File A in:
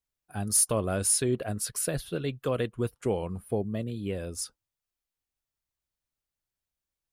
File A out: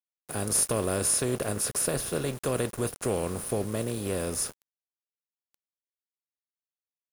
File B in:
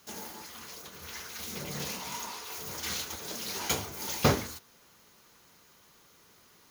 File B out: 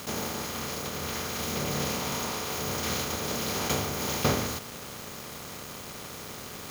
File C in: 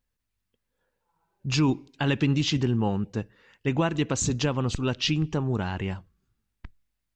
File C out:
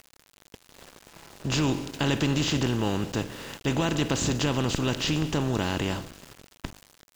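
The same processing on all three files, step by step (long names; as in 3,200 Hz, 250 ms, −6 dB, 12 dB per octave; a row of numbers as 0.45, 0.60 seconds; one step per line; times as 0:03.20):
compressor on every frequency bin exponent 0.4
centre clipping without the shift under −35 dBFS
normalise the peak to −12 dBFS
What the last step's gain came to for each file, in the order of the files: −4.0, −3.5, −5.5 decibels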